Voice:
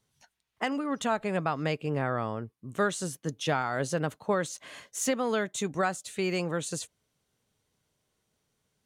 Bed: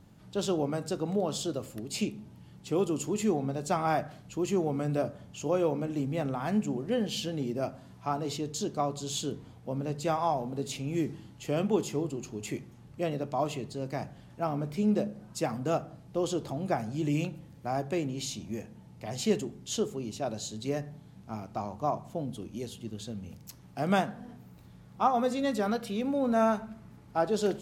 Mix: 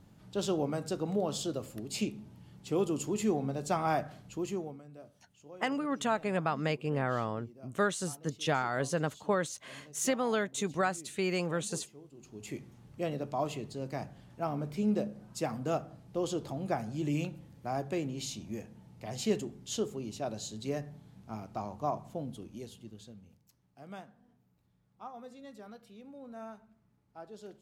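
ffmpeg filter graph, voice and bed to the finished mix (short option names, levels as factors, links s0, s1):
-filter_complex "[0:a]adelay=5000,volume=0.794[s0];[1:a]volume=6.68,afade=t=out:st=4.24:d=0.58:silence=0.105925,afade=t=in:st=12.11:d=0.56:silence=0.11885,afade=t=out:st=22.06:d=1.39:silence=0.141254[s1];[s0][s1]amix=inputs=2:normalize=0"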